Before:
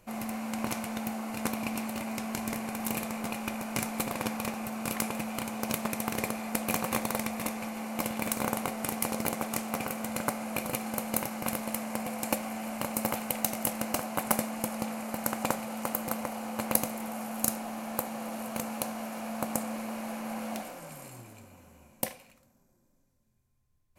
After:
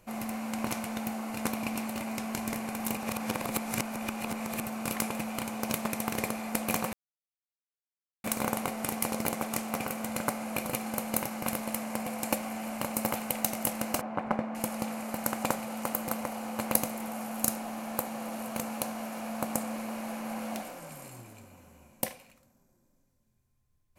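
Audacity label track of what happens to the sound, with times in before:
2.970000	4.600000	reverse
6.930000	8.240000	mute
14.010000	14.550000	LPF 1700 Hz

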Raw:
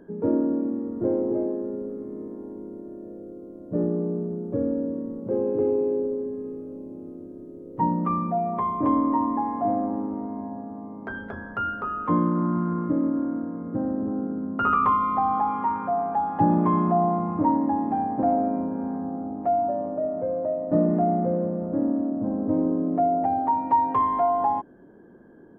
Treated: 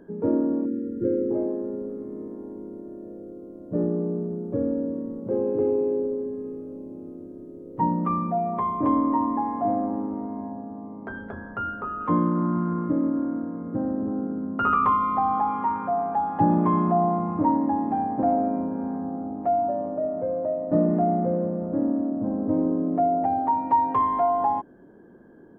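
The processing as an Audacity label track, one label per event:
0.660000	1.310000	spectral gain 560–1300 Hz -26 dB
10.520000	12.010000	high shelf 2500 Hz -10 dB

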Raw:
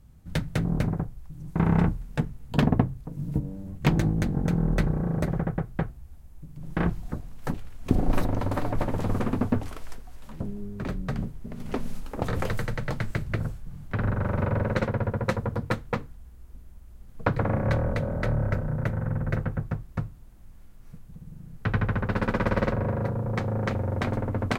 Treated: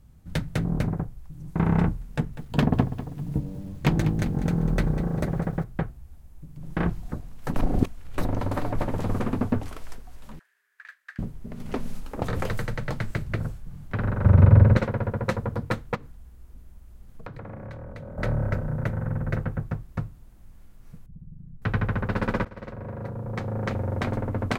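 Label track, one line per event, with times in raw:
2.130000	5.640000	lo-fi delay 0.197 s, feedback 35%, word length 8-bit, level -12.5 dB
7.560000	8.180000	reverse
10.390000	11.190000	ladder high-pass 1600 Hz, resonance 80%
14.240000	14.770000	bell 86 Hz +15 dB 2.4 oct
15.950000	18.180000	compressor, threshold -36 dBFS
21.060000	21.620000	formant sharpening exponent 1.5
22.450000	23.820000	fade in, from -22.5 dB

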